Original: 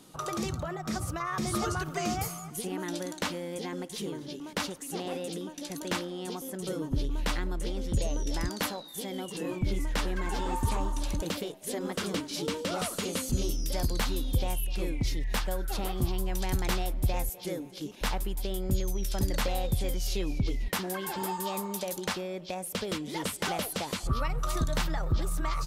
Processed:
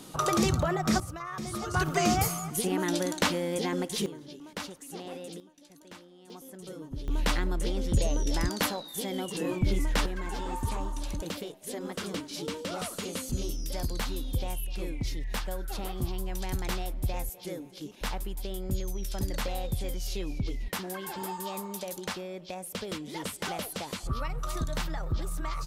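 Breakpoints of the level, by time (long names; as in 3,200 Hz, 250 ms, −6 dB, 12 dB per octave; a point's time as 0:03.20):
+7.5 dB
from 0:01.00 −5 dB
from 0:01.74 +6 dB
from 0:04.06 −5.5 dB
from 0:05.40 −17 dB
from 0:06.30 −8.5 dB
from 0:07.08 +3 dB
from 0:10.06 −3 dB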